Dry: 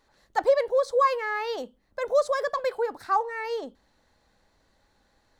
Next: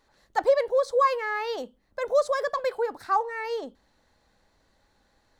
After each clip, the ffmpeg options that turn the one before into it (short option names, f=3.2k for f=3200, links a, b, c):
-af anull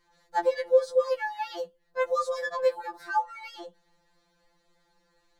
-af "afftfilt=real='re*2.83*eq(mod(b,8),0)':imag='im*2.83*eq(mod(b,8),0)':win_size=2048:overlap=0.75"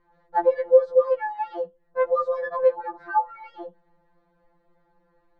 -af "lowpass=1.2k,volume=5.5dB"